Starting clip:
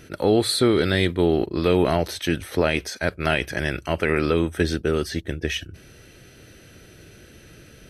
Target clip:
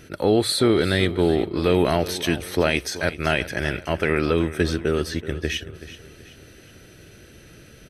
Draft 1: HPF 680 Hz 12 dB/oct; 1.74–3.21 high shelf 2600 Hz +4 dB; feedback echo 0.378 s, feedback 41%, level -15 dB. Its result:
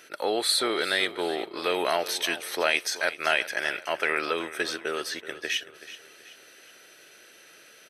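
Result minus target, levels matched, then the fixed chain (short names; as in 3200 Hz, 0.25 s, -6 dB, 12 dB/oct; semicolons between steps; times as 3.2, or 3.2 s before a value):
500 Hz band -3.0 dB
1.74–3.21 high shelf 2600 Hz +4 dB; feedback echo 0.378 s, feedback 41%, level -15 dB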